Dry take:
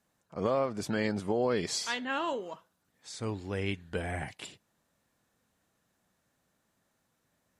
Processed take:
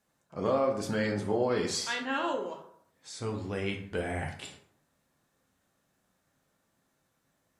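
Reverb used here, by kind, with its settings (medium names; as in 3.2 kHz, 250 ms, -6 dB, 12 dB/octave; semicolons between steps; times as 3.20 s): plate-style reverb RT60 0.65 s, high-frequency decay 0.55×, DRR 2 dB; trim -1 dB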